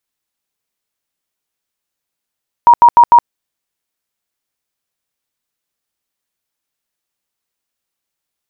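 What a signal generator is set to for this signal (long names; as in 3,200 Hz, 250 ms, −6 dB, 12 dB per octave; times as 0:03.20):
tone bursts 950 Hz, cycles 64, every 0.15 s, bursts 4, −1.5 dBFS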